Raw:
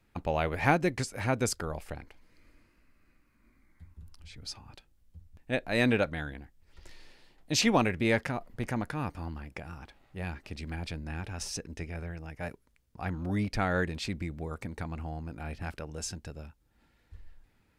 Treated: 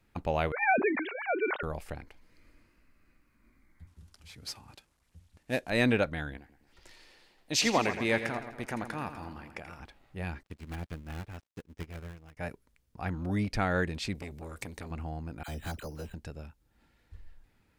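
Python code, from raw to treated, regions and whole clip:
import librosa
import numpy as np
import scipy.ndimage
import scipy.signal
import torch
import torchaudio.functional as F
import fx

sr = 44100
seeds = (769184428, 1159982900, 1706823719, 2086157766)

y = fx.chain(x, sr, fx.sine_speech(),
    fx.low_shelf(hz=310.0, db=-10.0),
    fx.sustainer(db_per_s=53.0), at=(0.52, 1.63))
y = fx.chain(y, sr, fx.cvsd(bps=64000),
    fx.highpass(hz=100.0, slope=6), at=(3.87, 5.7))
y = fx.chain(y, sr, fx.low_shelf(hz=210.0, db=-10.5),
    fx.echo_split(split_hz=2100.0, low_ms=115, high_ms=83, feedback_pct=52, wet_db=-10.0), at=(6.37, 9.8))
y = fx.chain(y, sr, fx.dead_time(dead_ms=0.26),
    fx.upward_expand(threshold_db=-55.0, expansion=2.5), at=(10.43, 12.37))
y = fx.chain(y, sr, fx.high_shelf(hz=2200.0, db=11.5),
    fx.notch(hz=1300.0, q=6.3),
    fx.transformer_sat(knee_hz=1300.0), at=(14.14, 14.91))
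y = fx.chain(y, sr, fx.dispersion(late='lows', ms=52.0, hz=960.0),
    fx.resample_bad(factor=8, down='filtered', up='hold'), at=(15.43, 16.14))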